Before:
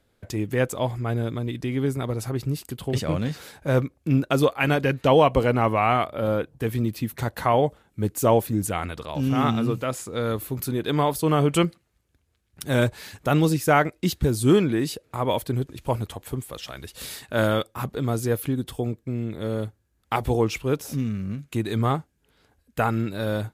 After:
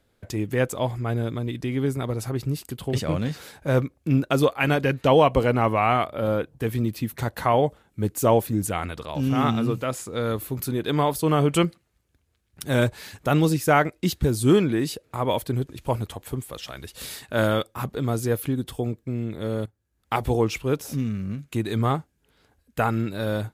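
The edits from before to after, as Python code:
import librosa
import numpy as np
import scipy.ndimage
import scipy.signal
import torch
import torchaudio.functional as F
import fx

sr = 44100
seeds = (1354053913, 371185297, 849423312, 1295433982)

y = fx.edit(x, sr, fx.fade_in_from(start_s=19.66, length_s=0.47, floor_db=-16.0), tone=tone)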